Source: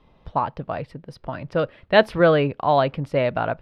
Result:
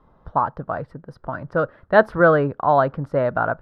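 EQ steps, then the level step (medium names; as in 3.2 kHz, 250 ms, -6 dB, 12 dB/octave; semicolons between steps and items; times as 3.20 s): resonant high shelf 1.9 kHz -9 dB, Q 3; 0.0 dB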